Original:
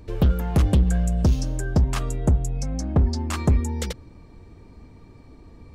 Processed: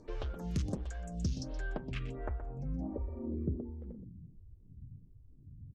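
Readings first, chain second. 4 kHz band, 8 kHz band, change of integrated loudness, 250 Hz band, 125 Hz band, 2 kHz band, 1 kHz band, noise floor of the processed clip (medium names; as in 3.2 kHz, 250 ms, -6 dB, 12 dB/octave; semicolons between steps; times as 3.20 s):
-15.0 dB, -18.5 dB, -16.5 dB, -14.0 dB, -17.5 dB, -11.5 dB, -16.0 dB, -58 dBFS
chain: low-pass sweep 6.2 kHz -> 130 Hz, 1.22–4.39 s; compression, threshold -25 dBFS, peak gain reduction 12 dB; spectral replace 2.90–3.40 s, 600–9100 Hz after; delay 123 ms -11 dB; lamp-driven phase shifter 1.4 Hz; trim -5 dB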